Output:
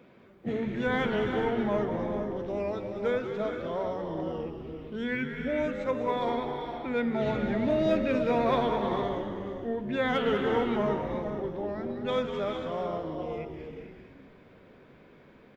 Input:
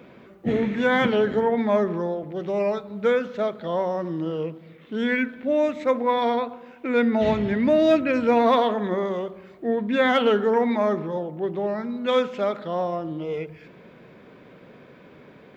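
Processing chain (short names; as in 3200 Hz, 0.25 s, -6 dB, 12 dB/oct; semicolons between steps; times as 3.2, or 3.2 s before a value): frequency-shifting echo 0.198 s, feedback 49%, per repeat -92 Hz, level -9 dB; non-linear reverb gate 0.49 s rising, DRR 5 dB; gain -8.5 dB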